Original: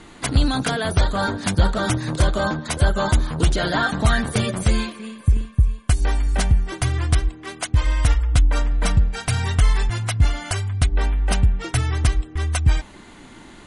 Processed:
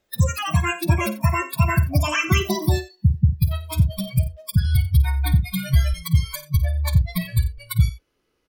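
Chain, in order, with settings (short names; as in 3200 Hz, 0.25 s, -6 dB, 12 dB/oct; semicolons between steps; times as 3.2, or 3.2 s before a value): speed glide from 180% -> 142%; spectral noise reduction 29 dB; tapped delay 52/89 ms -13.5/-17 dB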